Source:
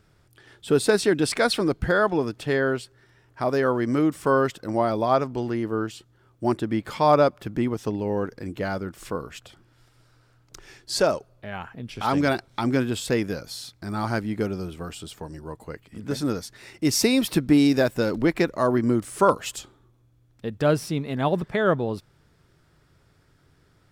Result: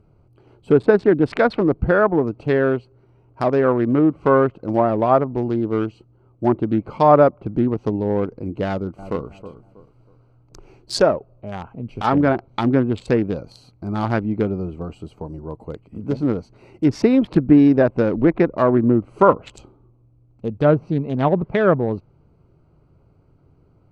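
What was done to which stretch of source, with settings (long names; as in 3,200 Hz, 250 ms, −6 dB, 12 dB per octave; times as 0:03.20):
0:08.66–0:09.29: delay throw 320 ms, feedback 30%, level −12.5 dB
whole clip: adaptive Wiener filter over 25 samples; treble cut that deepens with the level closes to 1,500 Hz, closed at −18.5 dBFS; level +6 dB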